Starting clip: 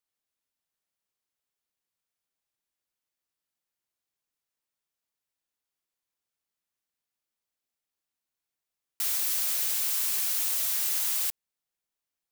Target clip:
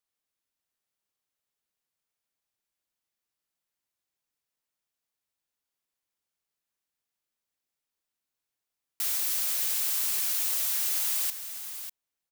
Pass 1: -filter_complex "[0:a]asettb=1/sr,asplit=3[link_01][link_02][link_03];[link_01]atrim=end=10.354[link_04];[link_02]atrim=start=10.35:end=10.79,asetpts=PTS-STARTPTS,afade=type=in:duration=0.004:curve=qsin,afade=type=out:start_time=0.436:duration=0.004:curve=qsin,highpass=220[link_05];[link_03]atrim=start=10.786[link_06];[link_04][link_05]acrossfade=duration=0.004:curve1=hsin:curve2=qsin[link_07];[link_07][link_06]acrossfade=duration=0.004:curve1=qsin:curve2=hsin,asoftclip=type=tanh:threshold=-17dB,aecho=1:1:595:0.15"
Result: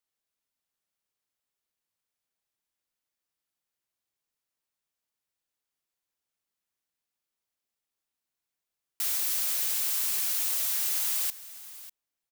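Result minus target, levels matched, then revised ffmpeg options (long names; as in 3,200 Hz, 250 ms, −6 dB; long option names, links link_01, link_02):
echo-to-direct −6.5 dB
-filter_complex "[0:a]asettb=1/sr,asplit=3[link_01][link_02][link_03];[link_01]atrim=end=10.354[link_04];[link_02]atrim=start=10.35:end=10.79,asetpts=PTS-STARTPTS,afade=type=in:duration=0.004:curve=qsin,afade=type=out:start_time=0.436:duration=0.004:curve=qsin,highpass=220[link_05];[link_03]atrim=start=10.786[link_06];[link_04][link_05]acrossfade=duration=0.004:curve1=hsin:curve2=qsin[link_07];[link_07][link_06]acrossfade=duration=0.004:curve1=qsin:curve2=hsin,asoftclip=type=tanh:threshold=-17dB,aecho=1:1:595:0.316"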